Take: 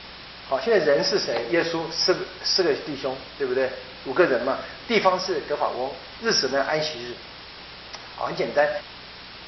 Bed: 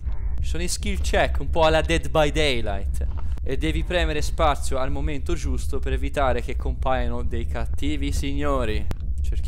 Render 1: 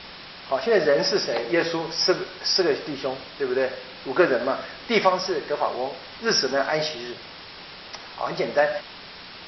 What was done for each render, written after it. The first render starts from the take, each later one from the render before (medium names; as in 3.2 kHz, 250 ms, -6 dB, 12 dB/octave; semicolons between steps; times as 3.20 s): de-hum 60 Hz, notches 2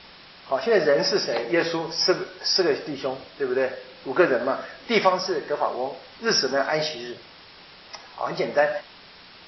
noise print and reduce 6 dB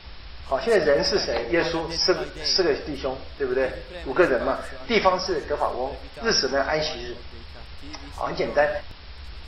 add bed -16 dB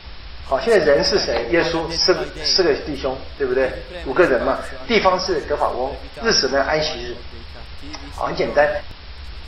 trim +5 dB; peak limiter -2 dBFS, peak gain reduction 2 dB